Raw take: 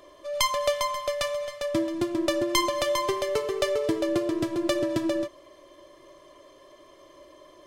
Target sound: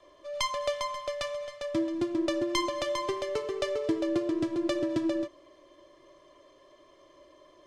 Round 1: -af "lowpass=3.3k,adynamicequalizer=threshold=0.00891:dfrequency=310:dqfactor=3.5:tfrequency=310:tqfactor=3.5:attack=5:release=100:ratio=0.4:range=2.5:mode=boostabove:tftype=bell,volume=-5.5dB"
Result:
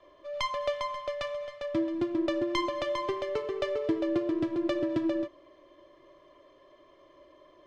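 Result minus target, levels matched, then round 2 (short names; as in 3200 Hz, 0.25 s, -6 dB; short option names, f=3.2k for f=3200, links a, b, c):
8000 Hz band -10.5 dB
-af "lowpass=7.2k,adynamicequalizer=threshold=0.00891:dfrequency=310:dqfactor=3.5:tfrequency=310:tqfactor=3.5:attack=5:release=100:ratio=0.4:range=2.5:mode=boostabove:tftype=bell,volume=-5.5dB"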